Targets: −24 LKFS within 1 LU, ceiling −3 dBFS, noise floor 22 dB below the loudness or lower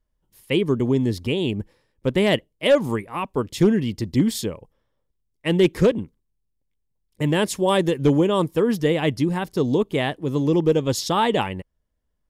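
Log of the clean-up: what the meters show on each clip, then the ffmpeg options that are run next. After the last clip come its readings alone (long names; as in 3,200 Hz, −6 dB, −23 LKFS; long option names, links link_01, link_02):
integrated loudness −22.0 LKFS; sample peak −9.0 dBFS; target loudness −24.0 LKFS
→ -af "volume=-2dB"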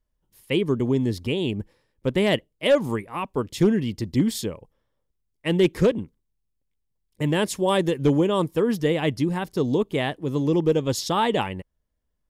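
integrated loudness −24.0 LKFS; sample peak −11.0 dBFS; background noise floor −76 dBFS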